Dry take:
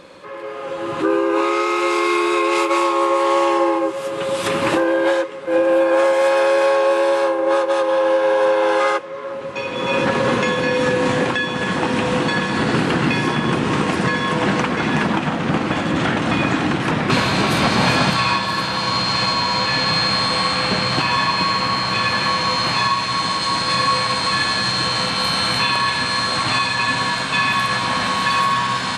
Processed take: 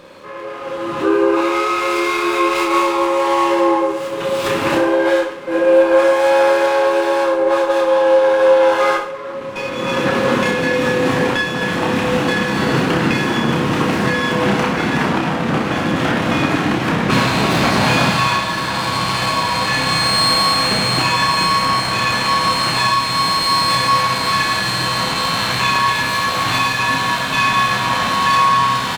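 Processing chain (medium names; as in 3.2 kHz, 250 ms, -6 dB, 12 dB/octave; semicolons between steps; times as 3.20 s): reverse bouncing-ball echo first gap 30 ms, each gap 1.15×, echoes 5; sliding maximum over 3 samples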